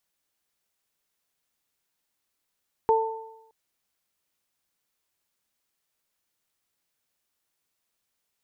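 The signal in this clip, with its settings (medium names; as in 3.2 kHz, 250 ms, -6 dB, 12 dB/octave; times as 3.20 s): additive tone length 0.62 s, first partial 446 Hz, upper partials 0 dB, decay 0.86 s, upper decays 0.87 s, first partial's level -18 dB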